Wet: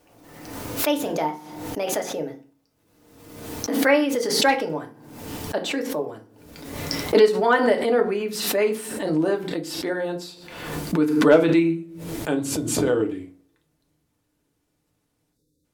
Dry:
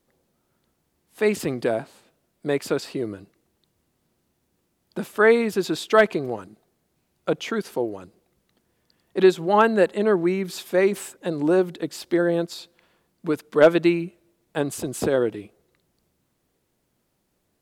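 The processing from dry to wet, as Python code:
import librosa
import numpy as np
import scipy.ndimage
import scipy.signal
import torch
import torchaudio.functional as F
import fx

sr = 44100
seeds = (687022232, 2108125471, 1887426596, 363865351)

y = fx.speed_glide(x, sr, from_pct=142, to_pct=82)
y = fx.spec_erase(y, sr, start_s=15.33, length_s=0.31, low_hz=570.0, high_hz=3500.0)
y = fx.rev_fdn(y, sr, rt60_s=0.38, lf_ratio=1.3, hf_ratio=0.75, size_ms=20.0, drr_db=2.0)
y = fx.pre_swell(y, sr, db_per_s=47.0)
y = F.gain(torch.from_numpy(y), -4.0).numpy()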